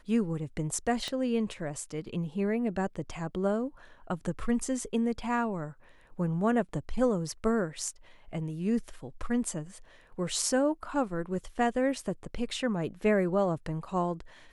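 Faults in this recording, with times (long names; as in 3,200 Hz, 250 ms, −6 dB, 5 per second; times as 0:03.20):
0:01.08: click −22 dBFS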